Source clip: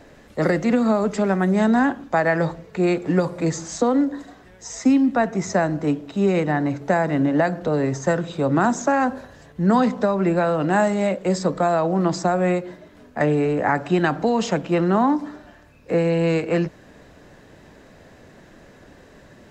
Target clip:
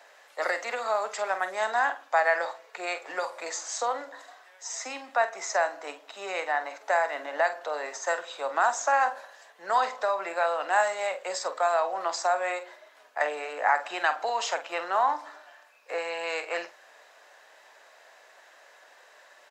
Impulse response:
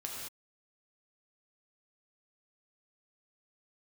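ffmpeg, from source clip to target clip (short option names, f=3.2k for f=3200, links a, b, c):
-filter_complex "[0:a]highpass=f=670:w=0.5412,highpass=f=670:w=1.3066,asplit=2[a][b];[b]adelay=47,volume=-11dB[c];[a][c]amix=inputs=2:normalize=0,volume=-1.5dB"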